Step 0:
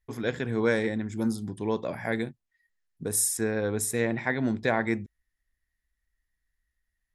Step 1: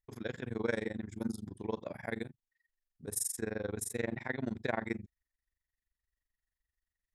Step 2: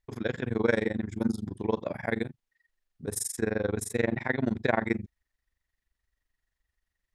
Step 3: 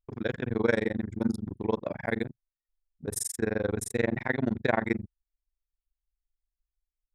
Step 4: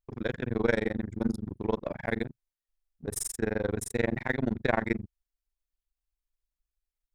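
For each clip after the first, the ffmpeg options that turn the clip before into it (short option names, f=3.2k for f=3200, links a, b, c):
-af "tremolo=f=23:d=0.974,aeval=exprs='0.266*(cos(1*acos(clip(val(0)/0.266,-1,1)))-cos(1*PI/2))+0.00944*(cos(3*acos(clip(val(0)/0.266,-1,1)))-cos(3*PI/2))':c=same,volume=-4.5dB"
-af "highshelf=f=7.2k:g=-10.5,volume=8.5dB"
-af "anlmdn=0.398"
-af "aeval=exprs='if(lt(val(0),0),0.708*val(0),val(0))':c=same"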